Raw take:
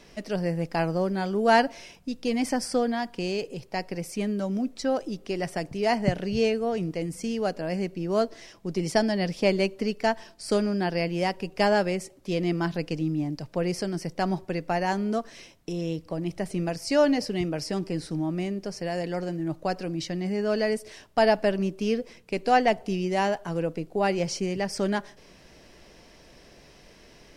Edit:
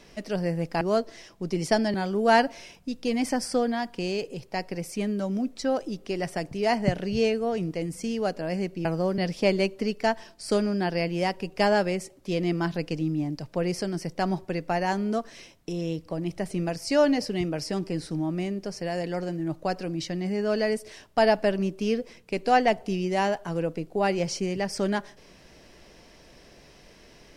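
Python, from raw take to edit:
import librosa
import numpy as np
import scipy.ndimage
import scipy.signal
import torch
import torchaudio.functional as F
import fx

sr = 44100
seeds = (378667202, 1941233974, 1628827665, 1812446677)

y = fx.edit(x, sr, fx.swap(start_s=0.81, length_s=0.33, other_s=8.05, other_length_s=1.13), tone=tone)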